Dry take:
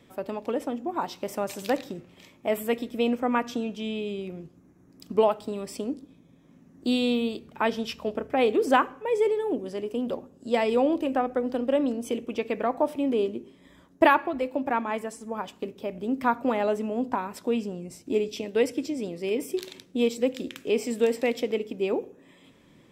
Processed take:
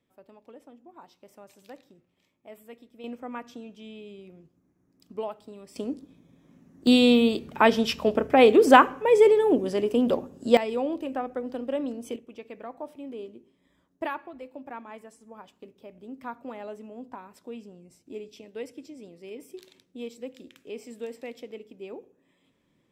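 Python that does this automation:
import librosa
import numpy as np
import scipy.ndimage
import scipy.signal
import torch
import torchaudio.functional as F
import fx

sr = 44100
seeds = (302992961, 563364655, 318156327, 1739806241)

y = fx.gain(x, sr, db=fx.steps((0.0, -20.0), (3.04, -12.0), (5.76, -1.0), (6.87, 6.5), (10.57, -5.5), (12.16, -13.5)))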